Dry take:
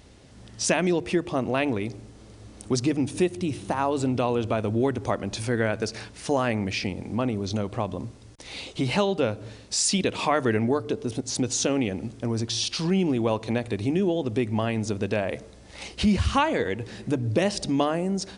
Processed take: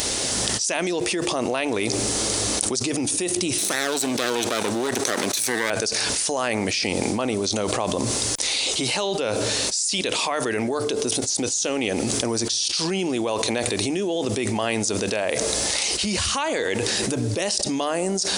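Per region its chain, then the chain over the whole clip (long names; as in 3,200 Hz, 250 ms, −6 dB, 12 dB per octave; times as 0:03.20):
0:03.58–0:05.70: lower of the sound and its delayed copy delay 0.49 ms + high-pass filter 190 Hz + parametric band 5,200 Hz +4 dB 2.9 octaves
whole clip: bass and treble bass −14 dB, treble +14 dB; envelope flattener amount 100%; level −14 dB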